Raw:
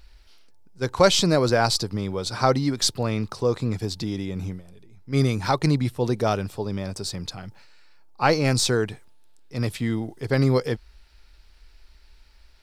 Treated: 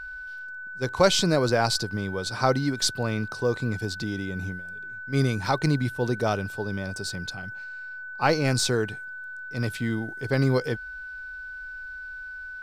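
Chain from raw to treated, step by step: short-mantissa float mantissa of 6-bit; whine 1500 Hz -33 dBFS; gain -2.5 dB

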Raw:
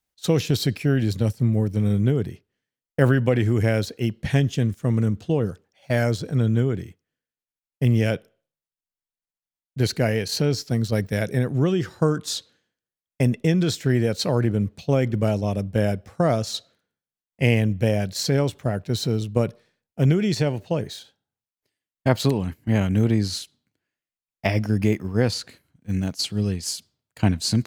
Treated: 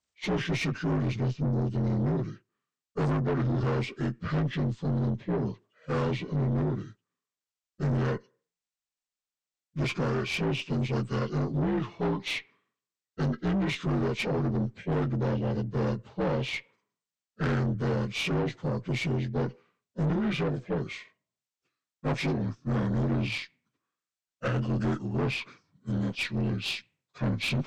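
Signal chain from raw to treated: inharmonic rescaling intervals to 79%; tube stage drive 24 dB, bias 0.4

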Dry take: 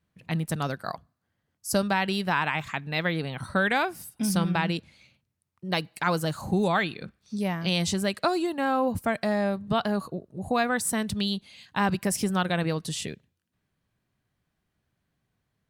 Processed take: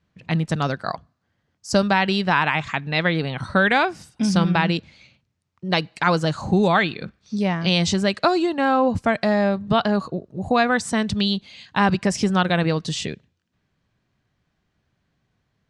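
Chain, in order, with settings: LPF 6800 Hz 24 dB/oct; gain +6.5 dB

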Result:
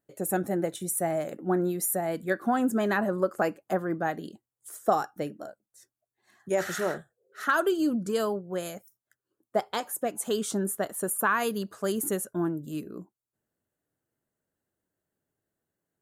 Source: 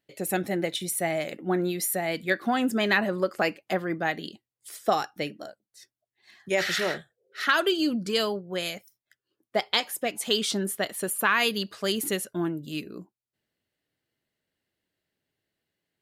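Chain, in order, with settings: band shelf 3200 Hz -13.5 dB

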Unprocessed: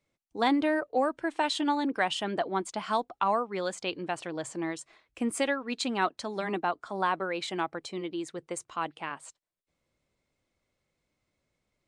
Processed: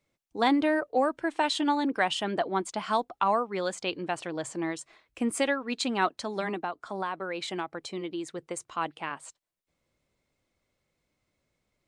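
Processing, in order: 6.48–8.67 compressor 3:1, threshold -32 dBFS, peak gain reduction 7.5 dB; gain +1.5 dB

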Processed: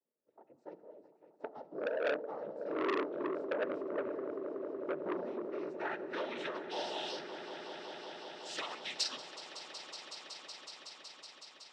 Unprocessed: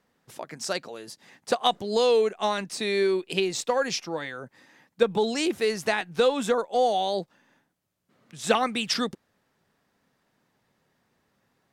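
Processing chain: Doppler pass-by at 3.45, 20 m/s, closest 10 m; HPF 280 Hz 12 dB/oct; tilt shelf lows -6.5 dB, about 930 Hz; compressor 2.5:1, threshold -33 dBFS, peak gain reduction 10 dB; hard clip -31.5 dBFS, distortion -11 dB; low-pass sweep 440 Hz -> 5000 Hz, 5.06–6.94; noise vocoder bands 12; swelling echo 0.186 s, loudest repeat 5, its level -14 dB; on a send at -14 dB: reverb RT60 1.2 s, pre-delay 3 ms; on the sum: core saturation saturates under 1700 Hz; gain +1 dB

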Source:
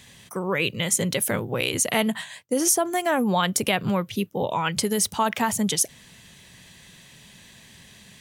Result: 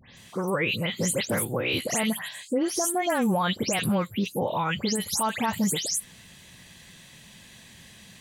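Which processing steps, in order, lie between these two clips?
spectral delay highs late, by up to 0.169 s; limiter -16.5 dBFS, peak gain reduction 9 dB

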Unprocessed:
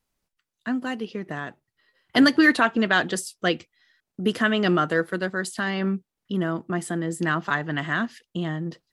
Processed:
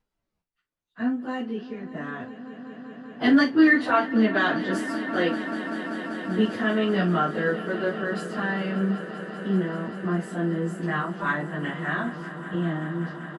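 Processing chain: LPF 1800 Hz 6 dB/oct; plain phase-vocoder stretch 1.5×; doubler 41 ms -11 dB; swelling echo 0.194 s, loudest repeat 5, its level -17 dB; gain +1.5 dB

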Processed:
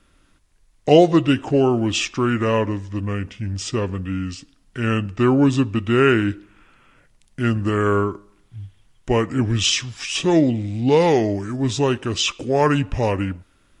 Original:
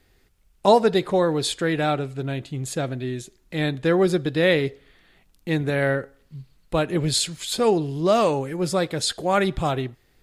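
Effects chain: speed mistake 45 rpm record played at 33 rpm; gain +3 dB

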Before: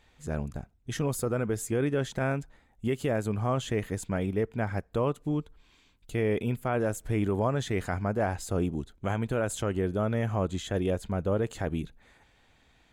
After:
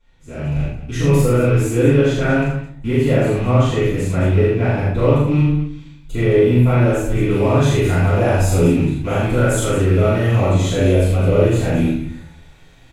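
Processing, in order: rattling part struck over -34 dBFS, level -33 dBFS; loudspeakers at several distances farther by 14 m -1 dB, 28 m -3 dB, 74 m -10 dB; AGC gain up to 10 dB; bell 12000 Hz -3 dB 1.6 oct, from 7.3 s +6 dB; reverb RT60 0.50 s, pre-delay 3 ms, DRR -12 dB; gain -16 dB

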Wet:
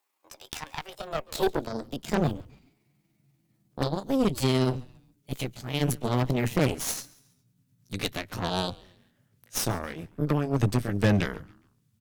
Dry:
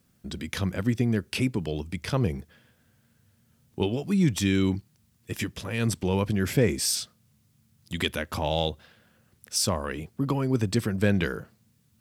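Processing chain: gliding pitch shift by +8 st ending unshifted; high-pass sweep 980 Hz -> 110 Hz, 0.88–2.37; added harmonics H 6 -13 dB, 7 -27 dB, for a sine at -9.5 dBFS; on a send: frequency-shifting echo 0.138 s, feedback 38%, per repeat -140 Hz, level -22 dB; on the sum: gain -3.5 dB

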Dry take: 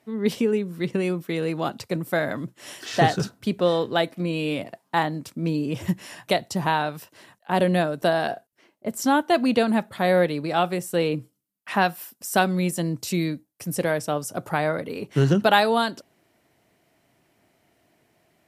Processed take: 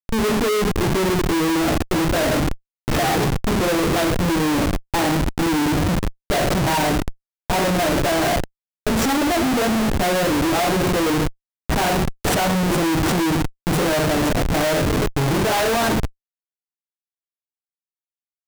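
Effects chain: dynamic EQ 340 Hz, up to +6 dB, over -35 dBFS, Q 1.3; two-slope reverb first 0.4 s, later 1.8 s, from -17 dB, DRR -1 dB; whine 2500 Hz -48 dBFS; Schmitt trigger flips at -24.5 dBFS

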